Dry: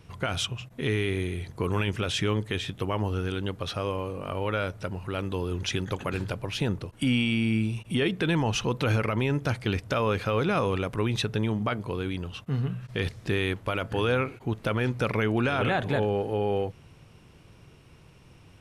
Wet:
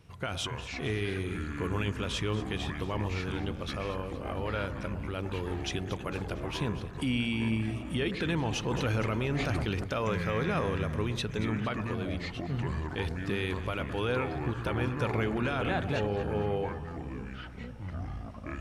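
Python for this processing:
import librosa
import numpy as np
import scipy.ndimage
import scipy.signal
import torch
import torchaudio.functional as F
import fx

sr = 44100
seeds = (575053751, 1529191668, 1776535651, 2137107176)

y = fx.echo_pitch(x, sr, ms=136, semitones=-6, count=3, db_per_echo=-6.0)
y = fx.echo_alternate(y, sr, ms=115, hz=1300.0, feedback_pct=71, wet_db=-11.5)
y = fx.sustainer(y, sr, db_per_s=25.0, at=(8.66, 9.84))
y = y * librosa.db_to_amplitude(-5.5)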